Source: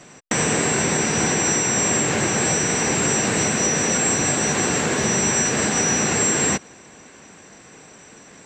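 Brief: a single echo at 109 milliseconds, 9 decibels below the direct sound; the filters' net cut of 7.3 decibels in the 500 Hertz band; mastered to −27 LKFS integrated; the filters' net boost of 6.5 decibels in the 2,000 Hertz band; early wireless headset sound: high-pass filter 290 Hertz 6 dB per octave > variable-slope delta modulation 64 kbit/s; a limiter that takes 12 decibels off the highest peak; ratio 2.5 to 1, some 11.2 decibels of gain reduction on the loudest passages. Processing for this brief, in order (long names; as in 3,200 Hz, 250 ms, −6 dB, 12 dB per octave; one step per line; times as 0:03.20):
parametric band 500 Hz −8 dB
parametric band 2,000 Hz +8.5 dB
downward compressor 2.5 to 1, threshold −36 dBFS
brickwall limiter −26.5 dBFS
high-pass filter 290 Hz 6 dB per octave
single-tap delay 109 ms −9 dB
variable-slope delta modulation 64 kbit/s
level +7.5 dB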